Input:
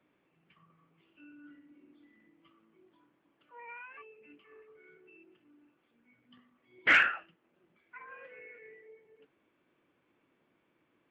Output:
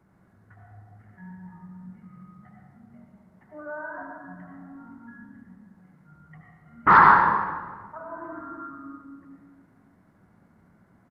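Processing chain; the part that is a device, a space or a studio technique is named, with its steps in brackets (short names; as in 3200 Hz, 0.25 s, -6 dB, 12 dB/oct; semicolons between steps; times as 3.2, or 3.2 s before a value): monster voice (pitch shift -8 st; low shelf 170 Hz +7.5 dB; reverb RT60 1.5 s, pre-delay 73 ms, DRR -0.5 dB); gain +8.5 dB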